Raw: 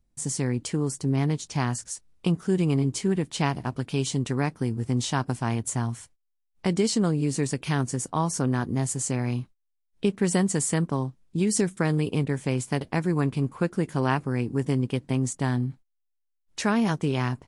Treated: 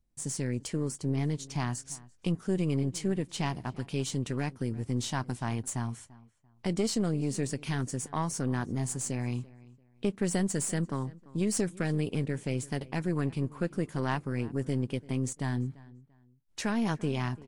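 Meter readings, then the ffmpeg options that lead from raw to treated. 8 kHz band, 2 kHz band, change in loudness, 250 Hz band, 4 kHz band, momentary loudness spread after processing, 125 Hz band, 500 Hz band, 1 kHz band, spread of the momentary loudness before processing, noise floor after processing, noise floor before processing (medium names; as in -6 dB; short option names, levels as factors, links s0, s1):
-5.5 dB, -6.0 dB, -6.0 dB, -5.5 dB, -5.5 dB, 6 LU, -5.5 dB, -6.0 dB, -7.0 dB, 6 LU, -63 dBFS, -76 dBFS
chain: -filter_complex "[0:a]aeval=exprs='(tanh(5.62*val(0)+0.45)-tanh(0.45))/5.62':c=same,asplit=2[s0][s1];[s1]adelay=341,lowpass=f=2700:p=1,volume=0.0944,asplit=2[s2][s3];[s3]adelay=341,lowpass=f=2700:p=1,volume=0.28[s4];[s0][s2][s4]amix=inputs=3:normalize=0,volume=0.668"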